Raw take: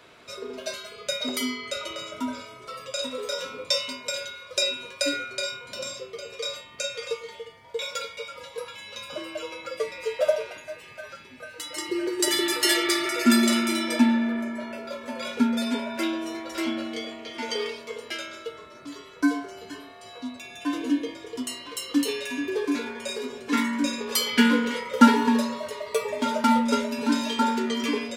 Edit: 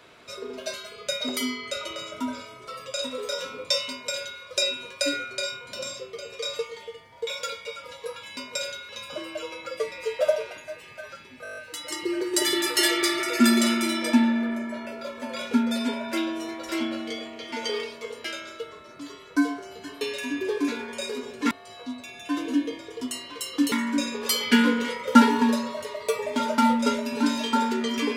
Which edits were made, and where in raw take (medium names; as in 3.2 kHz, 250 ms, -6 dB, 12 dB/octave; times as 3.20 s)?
3.90–4.42 s: copy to 8.89 s
6.59–7.11 s: delete
11.43 s: stutter 0.02 s, 8 plays
22.08–23.58 s: move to 19.87 s